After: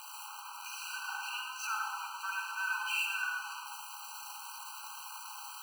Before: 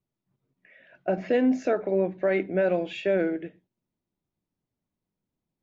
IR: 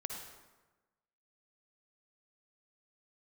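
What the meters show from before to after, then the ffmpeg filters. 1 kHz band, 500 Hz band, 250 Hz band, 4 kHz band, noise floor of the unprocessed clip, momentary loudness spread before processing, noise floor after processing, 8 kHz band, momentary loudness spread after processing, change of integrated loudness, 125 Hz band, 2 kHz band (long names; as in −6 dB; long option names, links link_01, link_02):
0.0 dB, below −40 dB, below −40 dB, +6.5 dB, below −85 dBFS, 9 LU, −47 dBFS, can't be measured, 11 LU, −11.5 dB, below −40 dB, +2.5 dB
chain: -filter_complex "[0:a]aeval=exprs='val(0)+0.5*0.0237*sgn(val(0))':channel_layout=same[link_01];[1:a]atrim=start_sample=2205[link_02];[link_01][link_02]afir=irnorm=-1:irlink=0,afftfilt=real='re*eq(mod(floor(b*sr/1024/790),2),1)':imag='im*eq(mod(floor(b*sr/1024/790),2),1)':win_size=1024:overlap=0.75,volume=4dB"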